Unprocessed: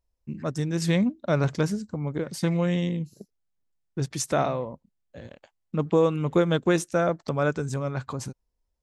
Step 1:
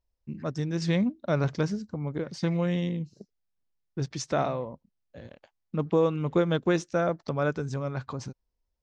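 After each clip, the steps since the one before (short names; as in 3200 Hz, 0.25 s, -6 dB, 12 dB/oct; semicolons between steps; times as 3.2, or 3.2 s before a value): Chebyshev low-pass 5700 Hz, order 3; gain -2.5 dB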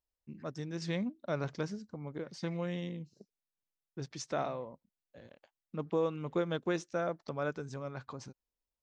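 low shelf 140 Hz -9.5 dB; gain -7 dB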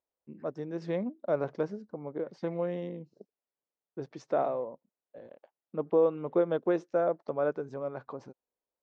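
band-pass 530 Hz, Q 1.1; gain +8 dB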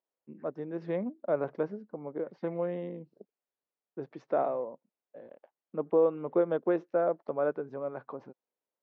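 BPF 150–2600 Hz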